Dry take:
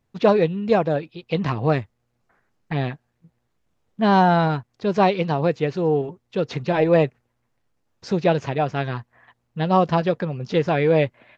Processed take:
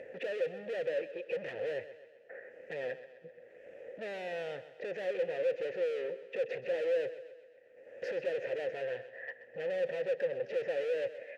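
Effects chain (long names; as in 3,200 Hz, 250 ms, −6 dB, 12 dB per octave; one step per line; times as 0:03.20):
graphic EQ with 10 bands 500 Hz +11 dB, 2,000 Hz +8 dB, 4,000 Hz −9 dB
upward compression, threshold −22 dBFS
hard clipping −30.5 dBFS, distortion 0 dB
formant filter e
on a send: feedback echo with a high-pass in the loop 129 ms, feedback 54%, high-pass 150 Hz, level −13.5 dB
on the sum: level +4.5 dB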